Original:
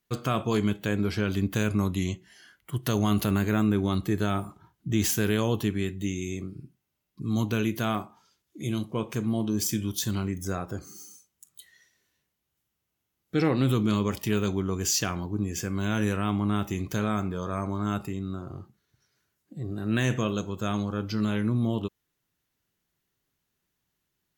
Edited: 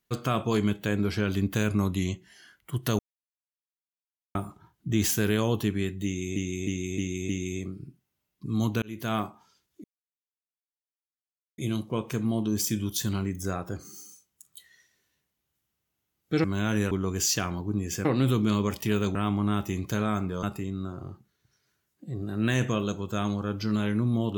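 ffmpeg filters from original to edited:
-filter_complex "[0:a]asplit=14[a][b][c][d][e][f][g][h][i][j][k][l][m][n];[a]atrim=end=2.99,asetpts=PTS-STARTPTS,afade=t=out:st=2.986:d=0.004:c=hsin[o];[b]atrim=start=2.99:end=4.35,asetpts=PTS-STARTPTS,volume=0[p];[c]atrim=start=4.35:end=6.362,asetpts=PTS-STARTPTS,afade=t=in:d=0.004:c=hsin[q];[d]atrim=start=6.048:end=6.362[r];[e]atrim=start=6.048:end=6.362[s];[f]atrim=start=6.048:end=6.362[t];[g]atrim=start=6.048:end=7.58,asetpts=PTS-STARTPTS,afade=t=out:st=1.528:d=0.004:c=hsin[u];[h]atrim=start=7.58:end=8.6,asetpts=PTS-STARTPTS,afade=t=in:d=0.34,afade=t=out:st=1.016:d=0.004:c=hsin,apad=pad_dur=1.74[v];[i]atrim=start=8.6:end=13.462,asetpts=PTS-STARTPTS,afade=t=in:d=0.004:c=hsin[w];[j]atrim=start=15.698:end=16.172[x];[k]atrim=start=14.558:end=15.702[y];[l]atrim=start=13.458:end=14.562[z];[m]atrim=start=16.168:end=17.452[aa];[n]atrim=start=17.918[ab];[o][p][q]concat=n=3:v=0:a=1[ac];[ac][r]acrossfade=d=0.004:c1=hsin:c2=hsin[ad];[ad][s]acrossfade=d=0.004:c1=hsin:c2=hsin[ae];[ae][t]acrossfade=d=0.004:c1=hsin:c2=hsin[af];[u][v][w]concat=n=3:v=0:a=1[ag];[af][ag]acrossfade=d=0.004:c1=hsin:c2=hsin[ah];[ah][x]acrossfade=d=0.004:c1=hsin:c2=hsin[ai];[ai][y]acrossfade=d=0.004:c1=hsin:c2=hsin[aj];[aj][z]acrossfade=d=0.004:c1=hsin:c2=hsin[ak];[ak][aa]acrossfade=d=0.004:c1=hsin:c2=hsin[al];[al][ab]acrossfade=d=0.004:c1=hsin:c2=hsin"

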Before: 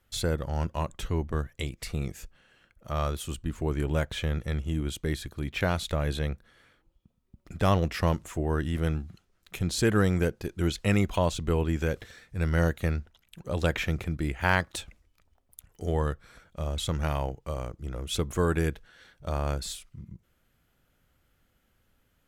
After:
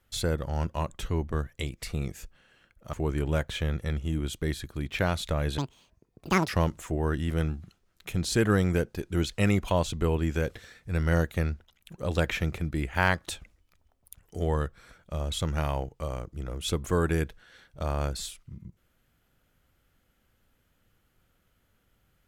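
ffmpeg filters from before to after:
-filter_complex "[0:a]asplit=4[a][b][c][d];[a]atrim=end=2.932[e];[b]atrim=start=3.548:end=6.204[f];[c]atrim=start=6.2:end=7.95,asetpts=PTS-STARTPTS,asetrate=85113,aresample=44100,atrim=end_sample=39987,asetpts=PTS-STARTPTS[g];[d]atrim=start=7.946[h];[e][f]acrossfade=d=0.004:c1=hsin:c2=hsin[i];[i][g]acrossfade=d=0.004:c1=hsin:c2=hsin[j];[j][h]acrossfade=d=0.004:c1=hsin:c2=hsin"

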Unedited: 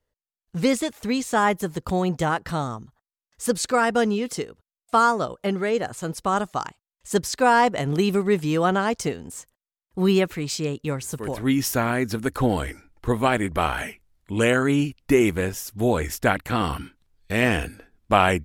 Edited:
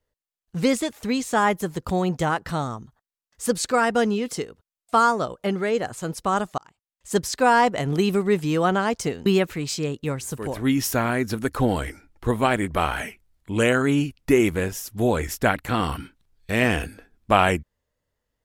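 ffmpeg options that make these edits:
-filter_complex "[0:a]asplit=3[a][b][c];[a]atrim=end=6.58,asetpts=PTS-STARTPTS,afade=t=out:st=6.576:d=0.004:c=hsin[d];[b]atrim=start=6.58:end=9.262,asetpts=PTS-STARTPTS,afade=t=in:d=0.59[e];[c]atrim=start=10.068[f];[d][e]concat=n=2:v=0:a=1[g];[g][f]acrossfade=d=0.004:c1=hsin:c2=hsin"

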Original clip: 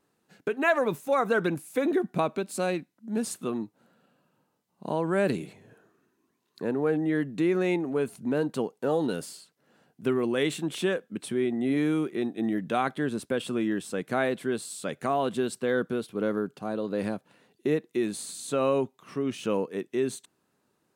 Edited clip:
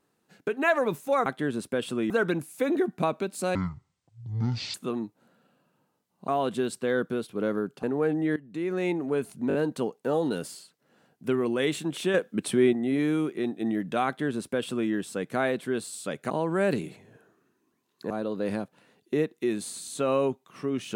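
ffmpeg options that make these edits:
-filter_complex "[0:a]asplit=15[a][b][c][d][e][f][g][h][i][j][k][l][m][n][o];[a]atrim=end=1.262[p];[b]atrim=start=12.838:end=13.682[q];[c]atrim=start=1.258:end=2.714[r];[d]atrim=start=2.71:end=3.33,asetpts=PTS-STARTPTS,asetrate=22932,aresample=44100[s];[e]atrim=start=3.326:end=4.872[t];[f]atrim=start=15.078:end=16.632[u];[g]atrim=start=6.668:end=7.2,asetpts=PTS-STARTPTS,afade=t=out:st=0.528:d=0.004:c=hsin:silence=0.11885[v];[h]atrim=start=7.2:end=8.342,asetpts=PTS-STARTPTS,afade=t=in:d=0.61:silence=0.11885[w];[i]atrim=start=8.318:end=8.342[x];[j]atrim=start=8.318:end=8.342[y];[k]atrim=start=8.318:end=10.922[z];[l]atrim=start=10.918:end=11.512,asetpts=PTS-STARTPTS,volume=6dB[aa];[m]atrim=start=11.508:end=15.082[ab];[n]atrim=start=4.868:end=6.672[ac];[o]atrim=start=16.628[ad];[p][q]acrossfade=d=0.004:c1=hsin:c2=hsin[ae];[ae][r]acrossfade=d=0.004:c1=hsin:c2=hsin[af];[af][s]acrossfade=d=0.004:c1=hsin:c2=hsin[ag];[ag][t]acrossfade=d=0.004:c1=hsin:c2=hsin[ah];[ah][u]acrossfade=d=0.004:c1=hsin:c2=hsin[ai];[v][w]concat=n=2:v=0:a=1[aj];[ai][aj]acrossfade=d=0.004:c1=hsin:c2=hsin[ak];[ak][x]acrossfade=d=0.004:c1=hsin:c2=hsin[al];[al][y]acrossfade=d=0.004:c1=hsin:c2=hsin[am];[am][z]acrossfade=d=0.004:c1=hsin:c2=hsin[an];[an][aa]acrossfade=d=0.004:c1=hsin:c2=hsin[ao];[ao][ab]acrossfade=d=0.004:c1=hsin:c2=hsin[ap];[ap][ac]acrossfade=d=0.004:c1=hsin:c2=hsin[aq];[aq][ad]acrossfade=d=0.004:c1=hsin:c2=hsin"

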